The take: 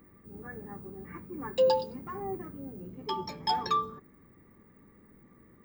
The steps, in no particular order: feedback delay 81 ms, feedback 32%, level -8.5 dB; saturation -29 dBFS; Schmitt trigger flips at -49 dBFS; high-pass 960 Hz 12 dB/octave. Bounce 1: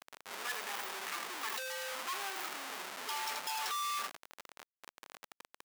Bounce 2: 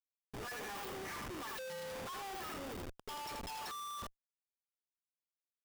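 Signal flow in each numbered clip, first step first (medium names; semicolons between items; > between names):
feedback delay > Schmitt trigger > saturation > high-pass; feedback delay > saturation > high-pass > Schmitt trigger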